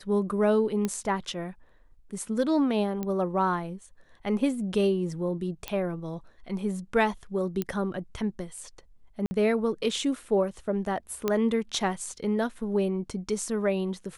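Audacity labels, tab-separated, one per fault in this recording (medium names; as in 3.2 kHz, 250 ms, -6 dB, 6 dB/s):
0.850000	0.850000	pop -15 dBFS
3.030000	3.030000	pop -19 dBFS
5.680000	5.680000	pop -15 dBFS
7.620000	7.620000	pop -15 dBFS
9.260000	9.310000	dropout 50 ms
11.280000	11.280000	pop -12 dBFS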